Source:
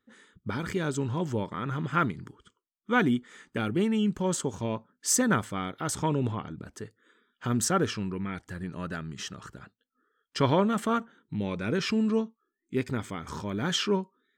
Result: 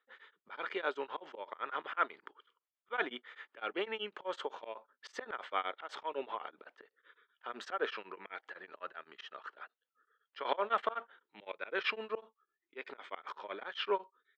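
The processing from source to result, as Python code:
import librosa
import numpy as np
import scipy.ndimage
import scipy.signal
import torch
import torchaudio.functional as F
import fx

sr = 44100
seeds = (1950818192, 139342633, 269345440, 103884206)

y = scipy.signal.sosfilt(scipy.signal.butter(4, 520.0, 'highpass', fs=sr, output='sos'), x)
y = fx.high_shelf_res(y, sr, hz=4600.0, db=-8.5, q=1.5)
y = fx.auto_swell(y, sr, attack_ms=144.0)
y = fx.air_absorb(y, sr, metres=220.0)
y = y * np.abs(np.cos(np.pi * 7.9 * np.arange(len(y)) / sr))
y = y * librosa.db_to_amplitude(4.0)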